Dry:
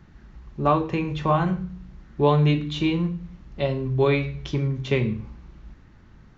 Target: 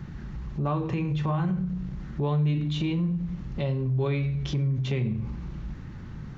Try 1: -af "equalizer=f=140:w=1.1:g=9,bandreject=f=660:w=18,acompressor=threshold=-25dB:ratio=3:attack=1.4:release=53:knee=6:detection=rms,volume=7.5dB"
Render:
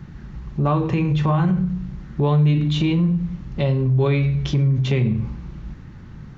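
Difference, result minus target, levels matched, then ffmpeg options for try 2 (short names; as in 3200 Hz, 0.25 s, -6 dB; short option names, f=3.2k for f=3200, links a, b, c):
compressor: peak gain reduction -8 dB
-af "equalizer=f=140:w=1.1:g=9,bandreject=f=660:w=18,acompressor=threshold=-37dB:ratio=3:attack=1.4:release=53:knee=6:detection=rms,volume=7.5dB"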